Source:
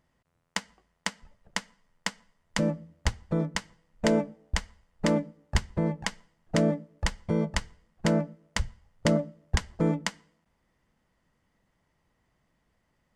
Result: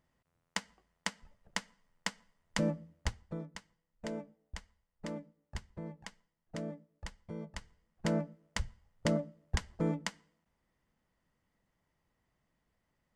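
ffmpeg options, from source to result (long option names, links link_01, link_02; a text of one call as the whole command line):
ffmpeg -i in.wav -af "volume=4.5dB,afade=type=out:start_time=2.82:duration=0.63:silence=0.266073,afade=type=in:start_time=7.53:duration=0.62:silence=0.334965" out.wav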